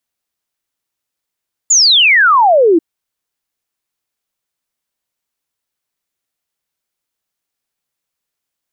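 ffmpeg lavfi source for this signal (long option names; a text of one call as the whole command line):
ffmpeg -f lavfi -i "aevalsrc='0.531*clip(min(t,1.09-t)/0.01,0,1)*sin(2*PI*7300*1.09/log(310/7300)*(exp(log(310/7300)*t/1.09)-1))':duration=1.09:sample_rate=44100" out.wav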